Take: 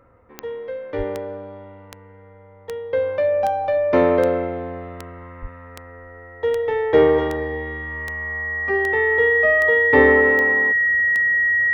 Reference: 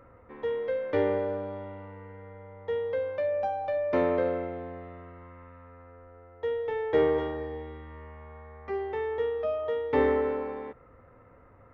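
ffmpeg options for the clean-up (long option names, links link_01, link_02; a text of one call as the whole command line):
ffmpeg -i in.wav -filter_complex "[0:a]adeclick=threshold=4,bandreject=frequency=1900:width=30,asplit=3[link_01][link_02][link_03];[link_01]afade=type=out:start_time=0.97:duration=0.02[link_04];[link_02]highpass=frequency=140:width=0.5412,highpass=frequency=140:width=1.3066,afade=type=in:start_time=0.97:duration=0.02,afade=type=out:start_time=1.09:duration=0.02[link_05];[link_03]afade=type=in:start_time=1.09:duration=0.02[link_06];[link_04][link_05][link_06]amix=inputs=3:normalize=0,asplit=3[link_07][link_08][link_09];[link_07]afade=type=out:start_time=5.41:duration=0.02[link_10];[link_08]highpass=frequency=140:width=0.5412,highpass=frequency=140:width=1.3066,afade=type=in:start_time=5.41:duration=0.02,afade=type=out:start_time=5.53:duration=0.02[link_11];[link_09]afade=type=in:start_time=5.53:duration=0.02[link_12];[link_10][link_11][link_12]amix=inputs=3:normalize=0,asetnsamples=nb_out_samples=441:pad=0,asendcmd='2.93 volume volume -9.5dB',volume=0dB" out.wav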